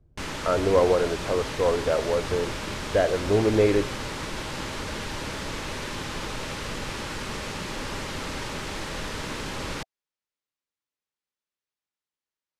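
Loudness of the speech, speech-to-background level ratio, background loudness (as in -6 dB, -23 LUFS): -24.5 LUFS, 8.0 dB, -32.5 LUFS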